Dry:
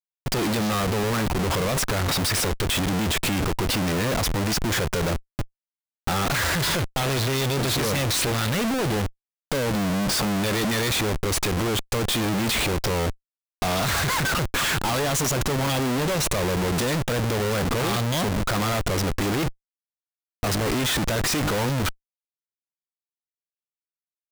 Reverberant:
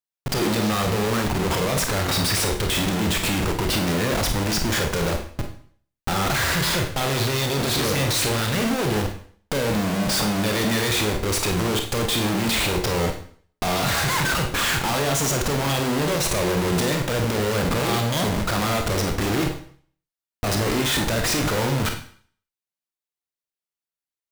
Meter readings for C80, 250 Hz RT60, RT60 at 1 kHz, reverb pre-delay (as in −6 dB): 11.5 dB, 0.50 s, 0.55 s, 28 ms